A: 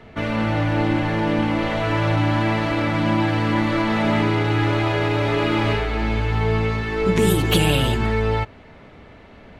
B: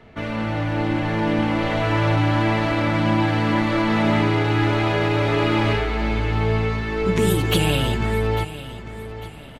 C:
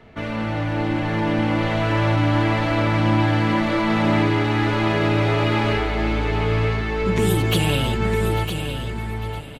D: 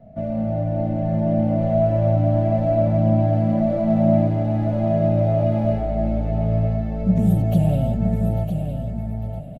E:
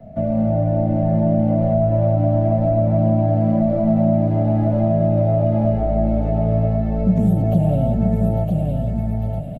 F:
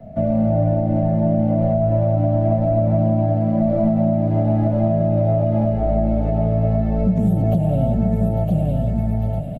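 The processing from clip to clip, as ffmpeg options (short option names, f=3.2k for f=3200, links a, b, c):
-af "aecho=1:1:849|1698|2547:0.178|0.0551|0.0171,dynaudnorm=f=170:g=13:m=4.5dB,volume=-3.5dB"
-filter_complex "[0:a]asoftclip=type=tanh:threshold=-8dB,asplit=2[a][b];[b]aecho=0:1:959:0.398[c];[a][c]amix=inputs=2:normalize=0"
-af "firequalizer=gain_entry='entry(100,0);entry(180,8);entry(400,-18);entry(640,11);entry(940,-20);entry(3200,-24);entry(6000,-18);entry(9000,-18);entry(13000,-10)':delay=0.05:min_phase=1"
-filter_complex "[0:a]acrossover=split=200|1300[a][b][c];[a]acompressor=threshold=-24dB:ratio=4[d];[b]acompressor=threshold=-24dB:ratio=4[e];[c]acompressor=threshold=-58dB:ratio=4[f];[d][e][f]amix=inputs=3:normalize=0,volume=6dB"
-af "alimiter=limit=-10.5dB:level=0:latency=1:release=233,volume=1.5dB"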